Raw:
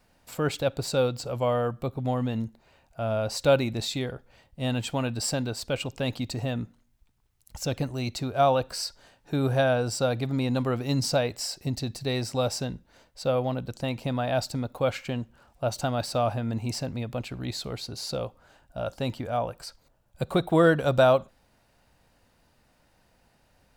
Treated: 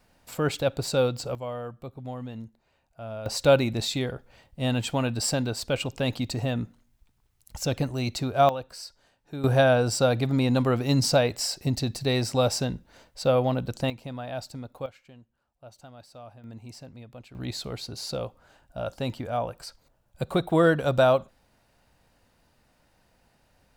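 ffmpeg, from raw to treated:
ffmpeg -i in.wav -af "asetnsamples=nb_out_samples=441:pad=0,asendcmd='1.35 volume volume -9dB;3.26 volume volume 2dB;8.49 volume volume -8.5dB;9.44 volume volume 3.5dB;13.9 volume volume -8dB;14.86 volume volume -20dB;16.44 volume volume -13dB;17.35 volume volume -0.5dB',volume=1dB" out.wav

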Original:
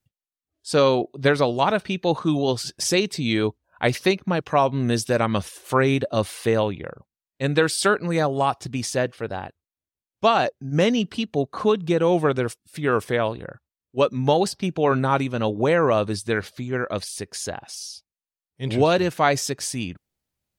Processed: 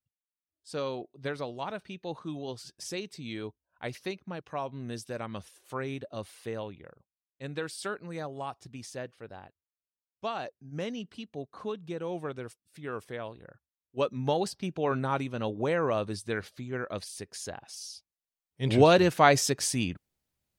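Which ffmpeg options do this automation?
ffmpeg -i in.wav -af "volume=-1dB,afade=type=in:start_time=13.38:duration=0.66:silence=0.446684,afade=type=in:start_time=17.64:duration=1.11:silence=0.398107" out.wav

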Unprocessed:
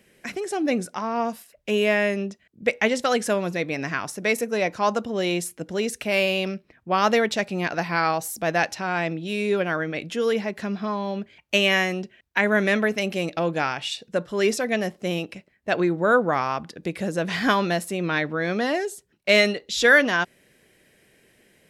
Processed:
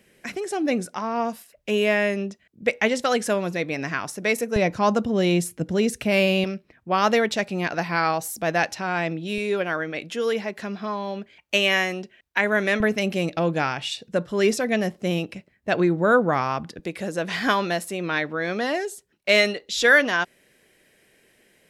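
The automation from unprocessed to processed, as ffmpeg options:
ffmpeg -i in.wav -af "asetnsamples=nb_out_samples=441:pad=0,asendcmd='4.56 equalizer g 11.5;6.44 equalizer g 0.5;9.38 equalizer g -6;12.8 equalizer g 5;16.79 equalizer g -5.5',equalizer=frequency=100:width_type=o:width=2.7:gain=0" out.wav

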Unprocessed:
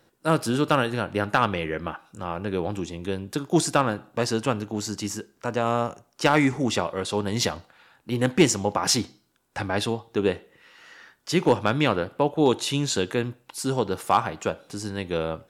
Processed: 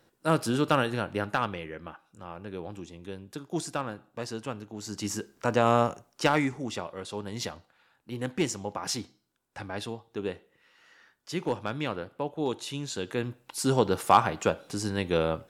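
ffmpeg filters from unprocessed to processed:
ffmpeg -i in.wav -af "volume=20.5dB,afade=type=out:start_time=0.94:duration=0.75:silence=0.398107,afade=type=in:start_time=4.79:duration=0.52:silence=0.237137,afade=type=out:start_time=5.82:duration=0.73:silence=0.266073,afade=type=in:start_time=12.96:duration=0.76:silence=0.281838" out.wav

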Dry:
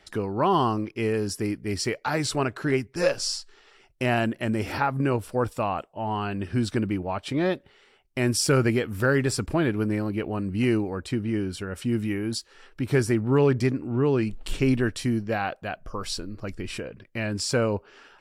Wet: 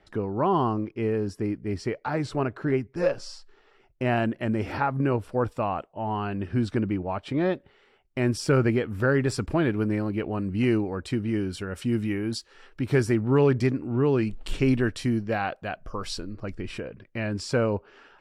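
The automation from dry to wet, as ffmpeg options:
ffmpeg -i in.wav -af "asetnsamples=nb_out_samples=441:pad=0,asendcmd='4.06 lowpass f 2000;9.28 lowpass f 3800;11.05 lowpass f 8500;11.99 lowpass f 5100;16.33 lowpass f 2500',lowpass=frequency=1100:poles=1" out.wav

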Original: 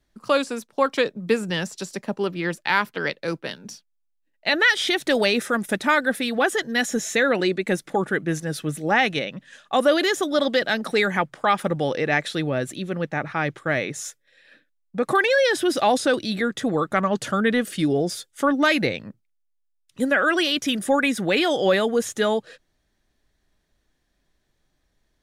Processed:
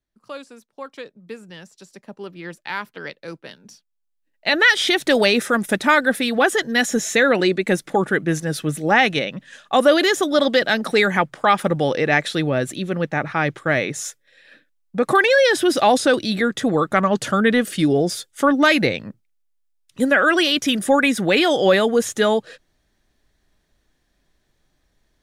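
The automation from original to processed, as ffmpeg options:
ffmpeg -i in.wav -af "volume=4dB,afade=type=in:start_time=1.7:duration=0.95:silence=0.446684,afade=type=in:start_time=3.68:duration=1.05:silence=0.281838" out.wav

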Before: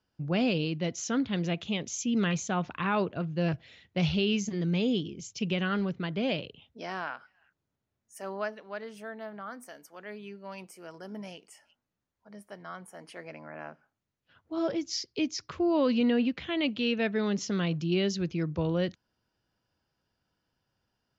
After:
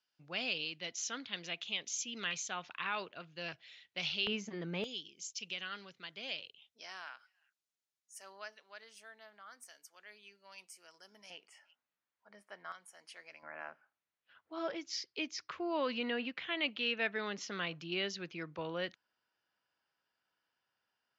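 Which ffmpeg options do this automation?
ffmpeg -i in.wav -af "asetnsamples=nb_out_samples=441:pad=0,asendcmd='4.27 bandpass f 1200;4.84 bandpass f 6200;11.3 bandpass f 2000;12.72 bandpass f 5100;13.43 bandpass f 1900',bandpass=frequency=3800:width_type=q:width=0.74:csg=0" out.wav

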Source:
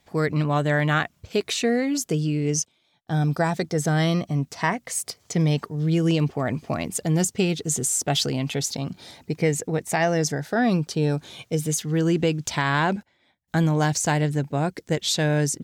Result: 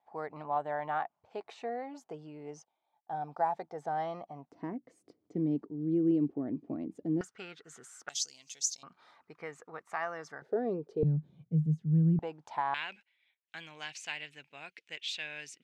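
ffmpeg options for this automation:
ffmpeg -i in.wav -af "asetnsamples=nb_out_samples=441:pad=0,asendcmd='4.52 bandpass f 300;7.21 bandpass f 1400;8.09 bandpass f 6300;8.83 bandpass f 1200;10.42 bandpass f 430;11.03 bandpass f 160;12.19 bandpass f 850;12.74 bandpass f 2600',bandpass=frequency=820:width_type=q:width=5:csg=0" out.wav

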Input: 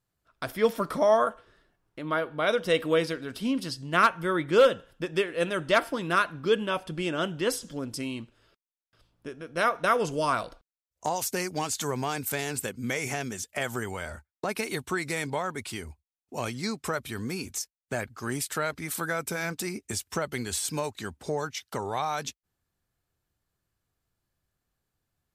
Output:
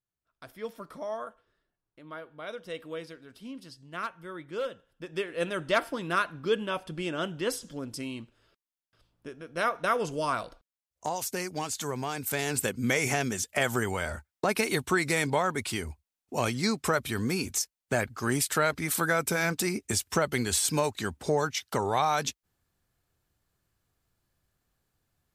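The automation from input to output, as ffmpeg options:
ffmpeg -i in.wav -af "volume=4dB,afade=type=in:start_time=4.89:duration=0.5:silence=0.281838,afade=type=in:start_time=12.16:duration=0.53:silence=0.446684" out.wav

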